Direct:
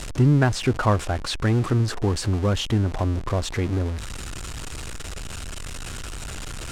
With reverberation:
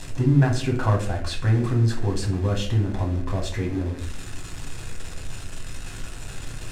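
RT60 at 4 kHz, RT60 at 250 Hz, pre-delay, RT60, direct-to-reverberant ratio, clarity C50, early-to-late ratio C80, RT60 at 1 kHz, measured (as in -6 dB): 0.35 s, 0.75 s, 6 ms, 0.55 s, 0.0 dB, 8.0 dB, 11.5 dB, 0.45 s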